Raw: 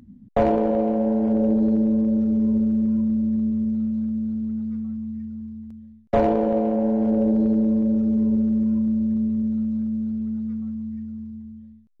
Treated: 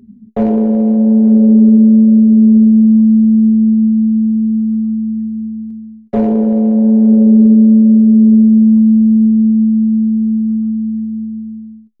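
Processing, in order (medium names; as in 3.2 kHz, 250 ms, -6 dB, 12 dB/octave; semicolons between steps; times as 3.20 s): small resonant body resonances 220/400 Hz, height 17 dB, ringing for 100 ms; trim -3.5 dB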